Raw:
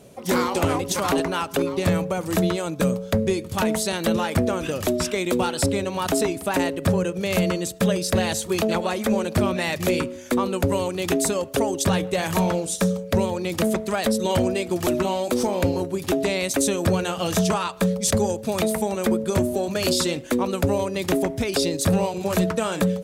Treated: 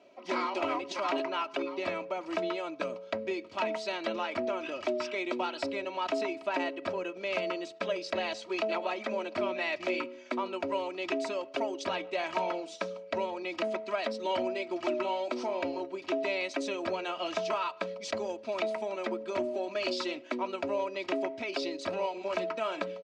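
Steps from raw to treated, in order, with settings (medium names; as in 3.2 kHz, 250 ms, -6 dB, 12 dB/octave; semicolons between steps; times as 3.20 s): cabinet simulation 410–4400 Hz, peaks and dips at 420 Hz -4 dB, 1.7 kHz -5 dB, 2.4 kHz +4 dB, 3.6 kHz -6 dB; comb 3.1 ms, depth 65%; trim -7.5 dB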